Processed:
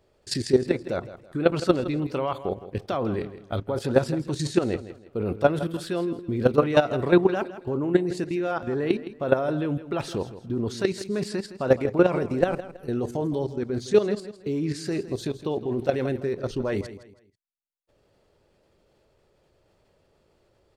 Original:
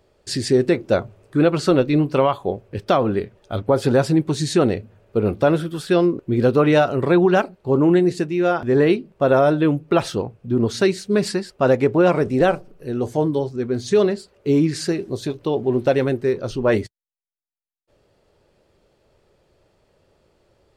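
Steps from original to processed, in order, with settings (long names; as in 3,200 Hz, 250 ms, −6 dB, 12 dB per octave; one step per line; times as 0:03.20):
output level in coarse steps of 13 dB
0:03.11–0:03.55: double-tracking delay 29 ms −8 dB
repeating echo 163 ms, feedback 31%, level −14 dB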